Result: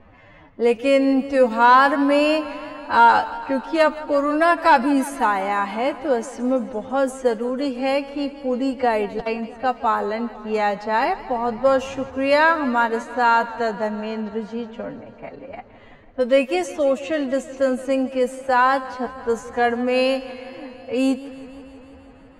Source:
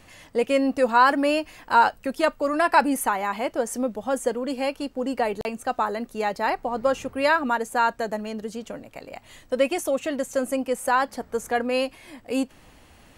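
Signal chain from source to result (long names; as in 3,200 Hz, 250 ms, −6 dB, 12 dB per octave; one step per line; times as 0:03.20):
soft clipping −7 dBFS, distortion −24 dB
high-shelf EQ 8,800 Hz −10 dB
phase-vocoder stretch with locked phases 1.7×
low-pass that shuts in the quiet parts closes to 1,400 Hz, open at −20.5 dBFS
feedback echo with a swinging delay time 165 ms, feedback 75%, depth 66 cents, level −17.5 dB
level +4.5 dB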